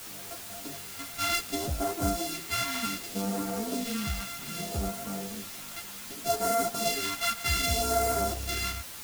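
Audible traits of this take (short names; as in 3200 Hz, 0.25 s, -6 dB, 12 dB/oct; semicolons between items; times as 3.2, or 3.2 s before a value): a buzz of ramps at a fixed pitch in blocks of 64 samples; phasing stages 2, 0.65 Hz, lowest notch 420–2900 Hz; a quantiser's noise floor 8-bit, dither triangular; a shimmering, thickened sound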